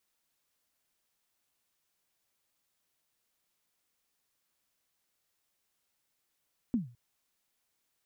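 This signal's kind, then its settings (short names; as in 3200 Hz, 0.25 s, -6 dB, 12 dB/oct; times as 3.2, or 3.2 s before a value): kick drum length 0.21 s, from 260 Hz, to 120 Hz, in 0.136 s, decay 0.36 s, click off, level -22.5 dB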